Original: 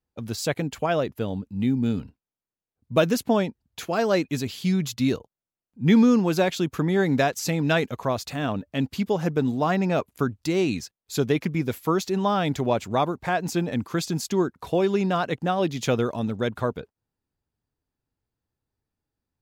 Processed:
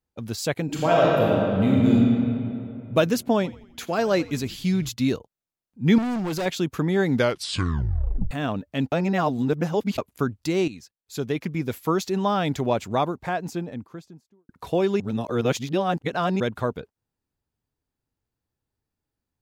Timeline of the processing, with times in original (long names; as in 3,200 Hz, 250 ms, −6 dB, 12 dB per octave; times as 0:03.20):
0:00.64–0:01.93: thrown reverb, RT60 2.8 s, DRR −5.5 dB
0:03.35–0:04.89: echo with shifted repeats 86 ms, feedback 50%, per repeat −65 Hz, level −19 dB
0:05.98–0:06.46: gain into a clipping stage and back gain 24.5 dB
0:07.09: tape stop 1.22 s
0:08.92–0:09.98: reverse
0:10.68–0:11.87: fade in, from −13.5 dB
0:12.87–0:14.49: fade out and dull
0:15.00–0:16.40: reverse